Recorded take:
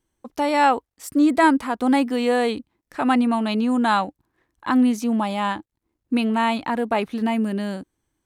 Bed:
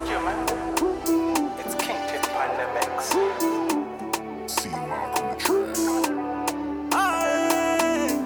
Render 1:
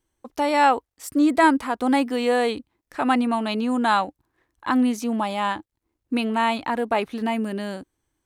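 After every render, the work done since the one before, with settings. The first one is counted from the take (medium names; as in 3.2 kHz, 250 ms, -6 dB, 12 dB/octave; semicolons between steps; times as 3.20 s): peaking EQ 190 Hz -5 dB 0.87 oct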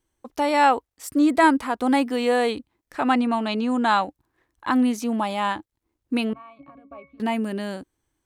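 3.00–4.01 s: low-pass 8.6 kHz 24 dB/octave; 6.33–7.20 s: pitch-class resonator C#, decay 0.22 s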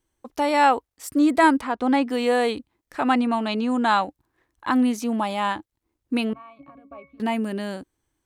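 1.61–2.09 s: distance through air 84 m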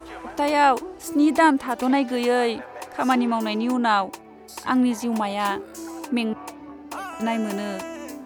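add bed -12 dB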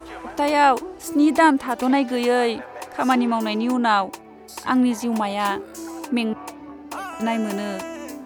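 trim +1.5 dB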